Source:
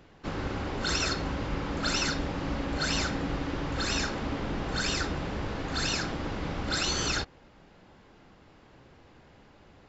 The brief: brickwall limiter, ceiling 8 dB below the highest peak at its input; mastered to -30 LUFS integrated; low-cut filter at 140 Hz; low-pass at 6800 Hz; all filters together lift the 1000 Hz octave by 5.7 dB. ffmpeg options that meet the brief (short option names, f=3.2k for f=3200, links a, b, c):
-af "highpass=140,lowpass=6.8k,equalizer=f=1k:t=o:g=7.5,volume=1.5dB,alimiter=limit=-20dB:level=0:latency=1"